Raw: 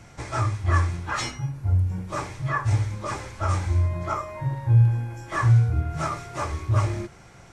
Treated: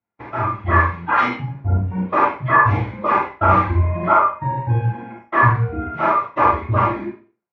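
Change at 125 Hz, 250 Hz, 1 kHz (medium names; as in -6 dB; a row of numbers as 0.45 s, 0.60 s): 0.0 dB, +8.5 dB, +14.5 dB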